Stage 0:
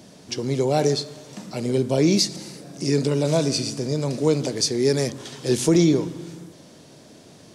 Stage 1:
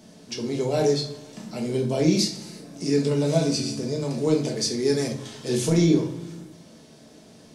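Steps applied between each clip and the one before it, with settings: reverberation RT60 0.45 s, pre-delay 5 ms, DRR 0 dB; trim -5.5 dB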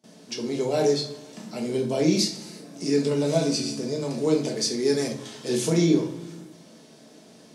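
gate with hold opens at -41 dBFS; high-pass 170 Hz 12 dB/octave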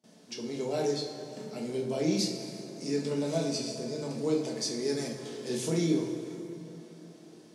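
plate-style reverb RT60 4 s, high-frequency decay 0.55×, DRR 6.5 dB; trim -7.5 dB

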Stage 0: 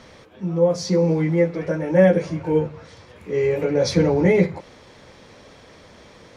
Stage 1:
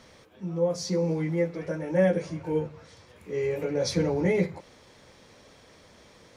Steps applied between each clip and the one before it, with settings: treble shelf 6.9 kHz +10 dB; trim -8 dB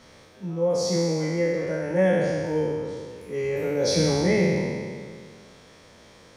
spectral sustain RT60 2.00 s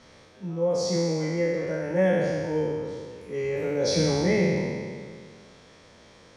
low-pass 8.2 kHz 12 dB/octave; trim -1.5 dB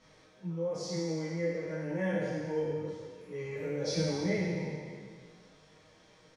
comb 6.4 ms, depth 51%; detune thickener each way 12 cents; trim -5.5 dB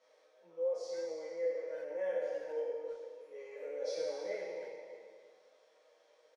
ladder high-pass 480 Hz, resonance 65%; speakerphone echo 330 ms, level -11 dB

